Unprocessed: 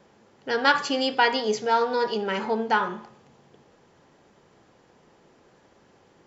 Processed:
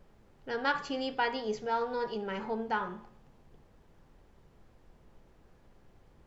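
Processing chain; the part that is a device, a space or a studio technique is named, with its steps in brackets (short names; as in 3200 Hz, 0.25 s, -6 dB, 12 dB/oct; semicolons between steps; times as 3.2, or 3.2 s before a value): car interior (bell 150 Hz +6 dB 0.64 oct; high shelf 3600 Hz -8 dB; brown noise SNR 22 dB); gain -9 dB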